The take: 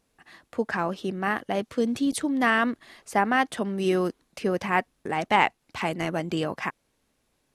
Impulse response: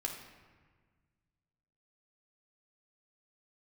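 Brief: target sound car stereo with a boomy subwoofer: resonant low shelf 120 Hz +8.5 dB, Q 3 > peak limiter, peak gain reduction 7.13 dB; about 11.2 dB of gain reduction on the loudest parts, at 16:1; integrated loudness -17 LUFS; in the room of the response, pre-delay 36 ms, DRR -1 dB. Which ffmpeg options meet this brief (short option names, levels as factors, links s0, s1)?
-filter_complex "[0:a]acompressor=threshold=0.0501:ratio=16,asplit=2[s0][s1];[1:a]atrim=start_sample=2205,adelay=36[s2];[s1][s2]afir=irnorm=-1:irlink=0,volume=1[s3];[s0][s3]amix=inputs=2:normalize=0,lowshelf=f=120:t=q:w=3:g=8.5,volume=5.01,alimiter=limit=0.473:level=0:latency=1"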